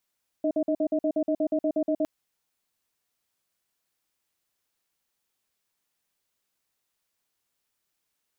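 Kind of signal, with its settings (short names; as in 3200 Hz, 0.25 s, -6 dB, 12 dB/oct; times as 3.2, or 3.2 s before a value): cadence 303 Hz, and 629 Hz, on 0.07 s, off 0.05 s, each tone -24.5 dBFS 1.61 s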